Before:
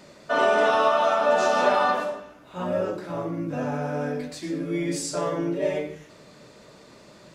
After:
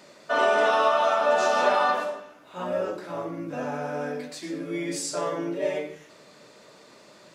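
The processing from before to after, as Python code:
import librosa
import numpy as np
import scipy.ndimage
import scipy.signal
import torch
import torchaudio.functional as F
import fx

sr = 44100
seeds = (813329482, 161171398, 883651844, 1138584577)

y = fx.highpass(x, sr, hz=360.0, slope=6)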